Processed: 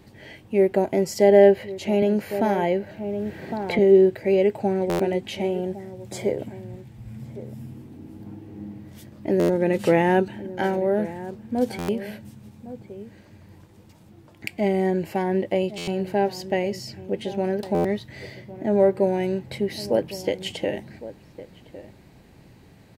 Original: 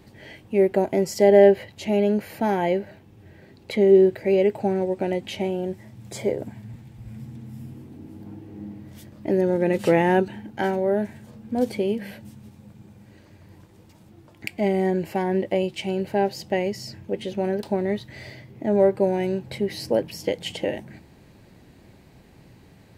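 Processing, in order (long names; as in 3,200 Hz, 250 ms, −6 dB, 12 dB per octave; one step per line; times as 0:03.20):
slap from a distant wall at 190 metres, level −15 dB
buffer that repeats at 0:04.89/0:09.39/0:11.78/0:15.77/0:17.74, samples 512, times 8
0:02.02–0:03.79: multiband upward and downward compressor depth 70%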